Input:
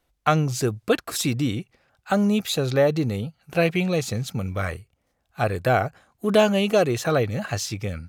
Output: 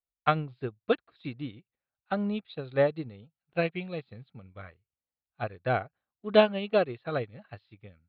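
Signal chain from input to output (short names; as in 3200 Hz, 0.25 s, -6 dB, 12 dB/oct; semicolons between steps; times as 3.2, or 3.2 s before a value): elliptic low-pass 4000 Hz, stop band 40 dB; upward expander 2.5:1, over -34 dBFS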